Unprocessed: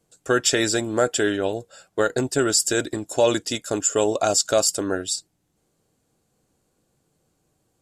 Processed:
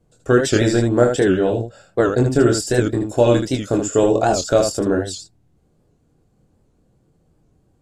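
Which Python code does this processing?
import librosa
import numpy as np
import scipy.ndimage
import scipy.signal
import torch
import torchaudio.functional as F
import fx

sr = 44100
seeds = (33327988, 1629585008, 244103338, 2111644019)

y = fx.tilt_eq(x, sr, slope=-3.0)
y = fx.room_early_taps(y, sr, ms=(25, 78), db=(-5.0, -6.0))
y = fx.record_warp(y, sr, rpm=78.0, depth_cents=160.0)
y = y * librosa.db_to_amplitude(1.0)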